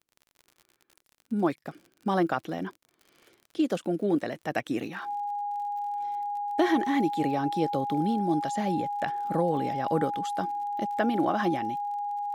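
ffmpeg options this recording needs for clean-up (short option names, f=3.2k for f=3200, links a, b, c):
-af "adeclick=t=4,bandreject=f=820:w=30"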